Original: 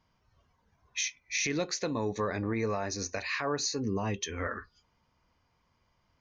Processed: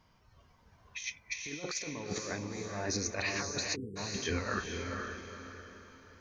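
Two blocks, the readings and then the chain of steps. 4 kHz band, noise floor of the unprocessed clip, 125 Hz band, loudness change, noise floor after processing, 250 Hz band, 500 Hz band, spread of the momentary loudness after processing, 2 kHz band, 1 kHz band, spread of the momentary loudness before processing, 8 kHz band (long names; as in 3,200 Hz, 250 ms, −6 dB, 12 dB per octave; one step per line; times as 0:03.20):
−2.0 dB, −74 dBFS, −3.5 dB, −4.5 dB, −66 dBFS, −5.0 dB, −5.5 dB, 14 LU, −1.5 dB, −4.5 dB, 5 LU, −2.5 dB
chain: compressor whose output falls as the input rises −37 dBFS, ratio −0.5
feedback delay with all-pass diffusion 469 ms, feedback 41%, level −3.5 dB
time-frequency box erased 0:03.76–0:03.96, 510–7,400 Hz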